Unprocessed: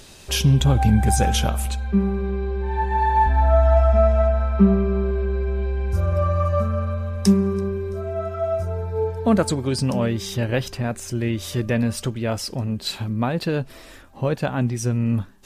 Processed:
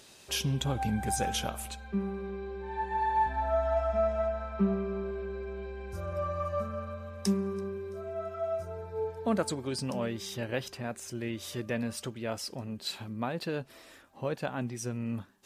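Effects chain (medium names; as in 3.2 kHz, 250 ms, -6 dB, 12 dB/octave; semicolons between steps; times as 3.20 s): high-pass 250 Hz 6 dB/octave; trim -8.5 dB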